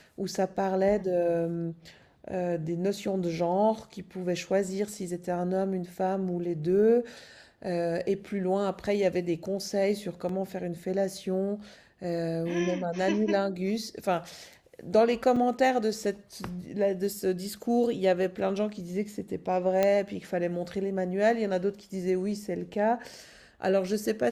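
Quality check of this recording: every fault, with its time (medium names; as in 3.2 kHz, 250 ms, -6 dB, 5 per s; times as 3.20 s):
10.29 s: dropout 3 ms
15.36 s: dropout 4.4 ms
19.83 s: pop -12 dBFS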